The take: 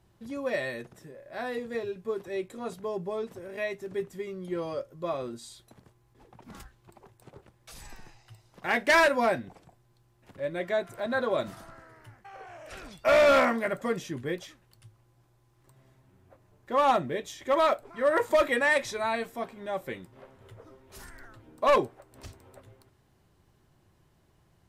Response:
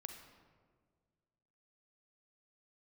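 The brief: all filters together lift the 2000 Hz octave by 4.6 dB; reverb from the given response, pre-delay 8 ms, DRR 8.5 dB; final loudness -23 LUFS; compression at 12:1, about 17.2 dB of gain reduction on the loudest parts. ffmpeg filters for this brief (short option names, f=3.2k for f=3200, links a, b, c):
-filter_complex "[0:a]equalizer=f=2k:t=o:g=5.5,acompressor=threshold=-34dB:ratio=12,asplit=2[a][b];[1:a]atrim=start_sample=2205,adelay=8[c];[b][c]afir=irnorm=-1:irlink=0,volume=-4.5dB[d];[a][d]amix=inputs=2:normalize=0,volume=16.5dB"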